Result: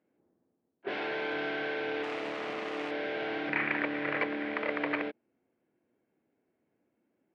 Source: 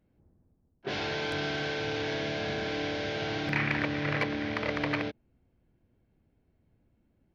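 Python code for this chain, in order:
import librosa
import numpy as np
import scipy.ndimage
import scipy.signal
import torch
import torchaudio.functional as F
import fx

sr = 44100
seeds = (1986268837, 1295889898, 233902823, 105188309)

y = fx.self_delay(x, sr, depth_ms=0.7, at=(2.03, 2.91))
y = scipy.signal.sosfilt(scipy.signal.cheby1(2, 1.0, [320.0, 2300.0], 'bandpass', fs=sr, output='sos'), y)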